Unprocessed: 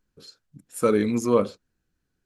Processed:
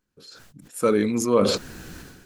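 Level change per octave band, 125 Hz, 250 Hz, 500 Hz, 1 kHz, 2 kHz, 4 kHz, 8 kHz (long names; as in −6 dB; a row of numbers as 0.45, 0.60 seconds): +1.0, +1.0, +1.5, +1.5, +3.0, +12.0, +6.0 decibels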